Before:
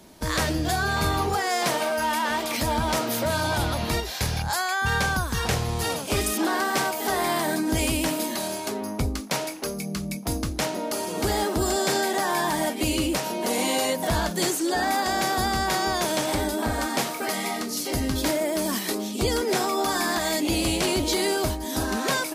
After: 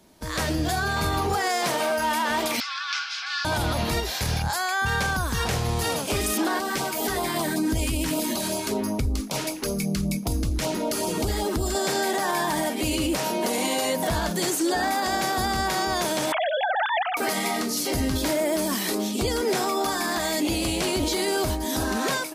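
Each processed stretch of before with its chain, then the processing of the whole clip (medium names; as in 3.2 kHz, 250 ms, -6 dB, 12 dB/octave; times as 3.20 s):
2.60–3.45 s: elliptic band-pass 1.2–5.2 kHz, stop band 60 dB + band-stop 1.7 kHz, Q 5.5 + frequency shift +180 Hz
6.59–11.75 s: bass shelf 80 Hz +11.5 dB + compression, threshold -24 dBFS + LFO notch sine 5.2 Hz 610–1900 Hz
16.32–17.17 s: formants replaced by sine waves + high-pass 580 Hz
whole clip: level rider gain up to 11 dB; peak limiter -9.5 dBFS; trim -6.5 dB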